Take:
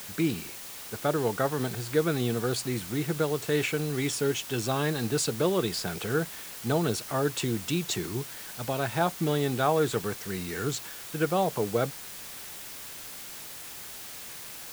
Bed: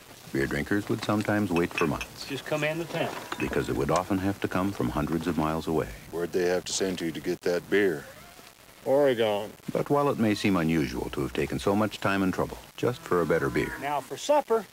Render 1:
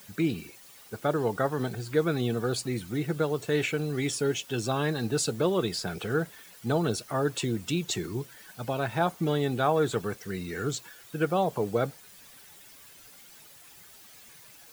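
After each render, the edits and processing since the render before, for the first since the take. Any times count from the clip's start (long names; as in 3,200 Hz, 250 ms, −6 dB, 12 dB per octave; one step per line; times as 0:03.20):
broadband denoise 12 dB, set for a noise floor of −42 dBFS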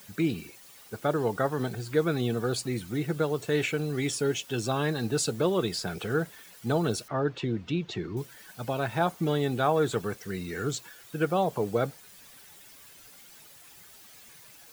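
0:07.08–0:08.17: high-frequency loss of the air 230 metres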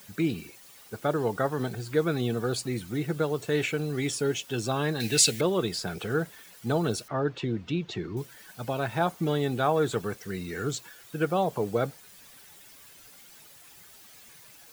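0:05.00–0:05.41: high shelf with overshoot 1,600 Hz +9.5 dB, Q 3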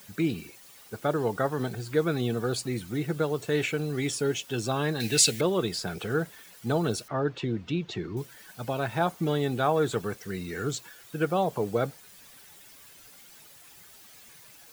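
no processing that can be heard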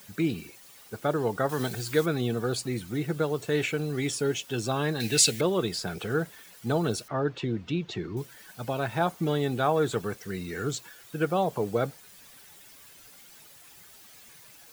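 0:01.49–0:02.06: high-shelf EQ 2,000 Hz +9.5 dB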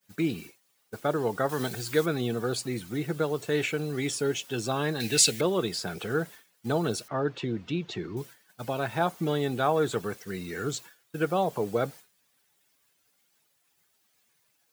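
downward expander −39 dBFS
low-shelf EQ 73 Hz −10.5 dB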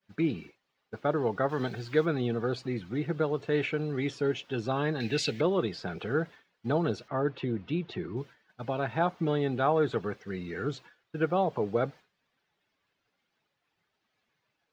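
high-frequency loss of the air 240 metres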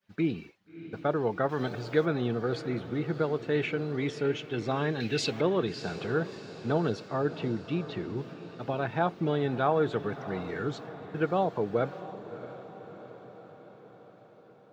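feedback delay with all-pass diffusion 652 ms, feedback 60%, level −13.5 dB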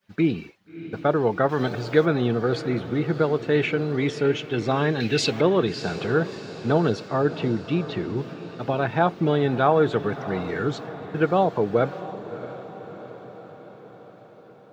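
level +7 dB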